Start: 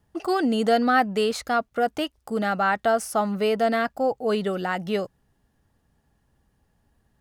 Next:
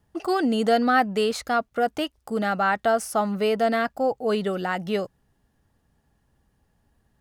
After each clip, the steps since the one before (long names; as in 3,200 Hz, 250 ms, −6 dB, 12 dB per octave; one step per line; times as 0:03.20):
no processing that can be heard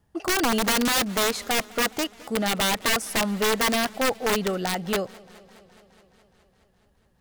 wrap-around overflow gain 17 dB
feedback echo with a swinging delay time 209 ms, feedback 73%, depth 91 cents, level −23 dB